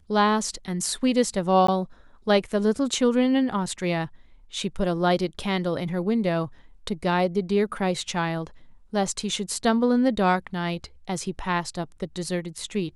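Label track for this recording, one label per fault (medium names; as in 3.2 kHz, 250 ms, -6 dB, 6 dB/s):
1.670000	1.680000	dropout 14 ms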